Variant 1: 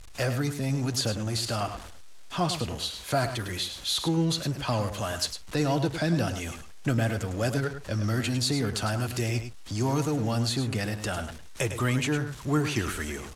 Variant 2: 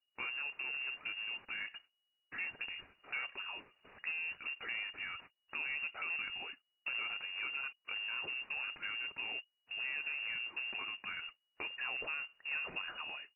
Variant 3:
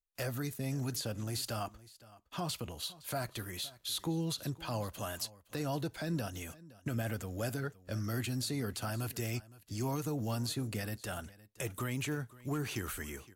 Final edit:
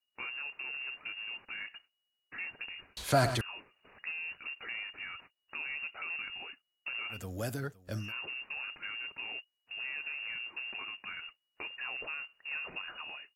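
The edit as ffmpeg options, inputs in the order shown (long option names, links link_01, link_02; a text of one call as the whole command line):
ffmpeg -i take0.wav -i take1.wav -i take2.wav -filter_complex "[1:a]asplit=3[link_01][link_02][link_03];[link_01]atrim=end=2.972[link_04];[0:a]atrim=start=2.968:end=3.412[link_05];[link_02]atrim=start=3.408:end=7.25[link_06];[2:a]atrim=start=7.09:end=8.13[link_07];[link_03]atrim=start=7.97[link_08];[link_04][link_05]acrossfade=duration=0.004:curve1=hsin:curve2=hsin[link_09];[link_09][link_06]acrossfade=duration=0.004:curve1=hsin:curve2=hsin[link_10];[link_10][link_07]acrossfade=duration=0.16:curve1=tri:curve2=tri[link_11];[link_11][link_08]acrossfade=duration=0.16:curve1=tri:curve2=tri" out.wav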